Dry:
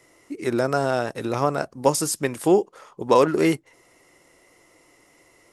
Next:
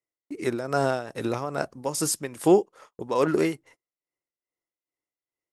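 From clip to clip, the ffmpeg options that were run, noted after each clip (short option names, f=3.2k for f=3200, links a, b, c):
-af "agate=range=-37dB:threshold=-44dB:ratio=16:detection=peak,tremolo=f=2.4:d=0.72"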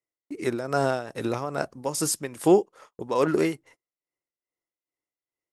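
-af anull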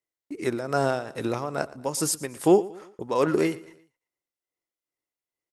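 -af "aecho=1:1:116|232|348:0.106|0.0445|0.0187"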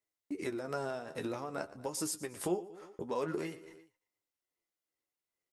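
-af "acompressor=threshold=-37dB:ratio=2.5,flanger=delay=9.6:depth=2.9:regen=37:speed=0.5:shape=sinusoidal,volume=2.5dB"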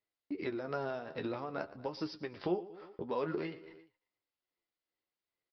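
-af "aresample=11025,aresample=44100"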